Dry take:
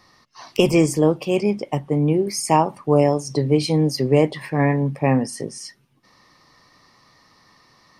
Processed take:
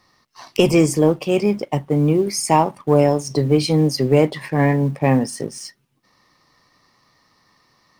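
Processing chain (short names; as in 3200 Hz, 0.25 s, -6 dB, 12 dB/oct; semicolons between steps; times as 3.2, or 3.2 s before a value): G.711 law mismatch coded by A; in parallel at -5.5 dB: soft clip -18 dBFS, distortion -8 dB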